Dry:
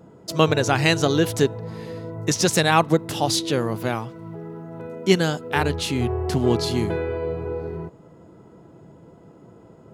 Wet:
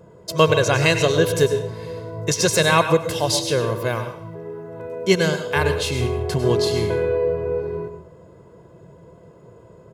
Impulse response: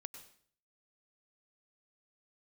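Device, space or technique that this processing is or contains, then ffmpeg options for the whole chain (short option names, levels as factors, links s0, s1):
microphone above a desk: -filter_complex "[0:a]aecho=1:1:1.9:0.63[s0];[1:a]atrim=start_sample=2205[s1];[s0][s1]afir=irnorm=-1:irlink=0,volume=1.88"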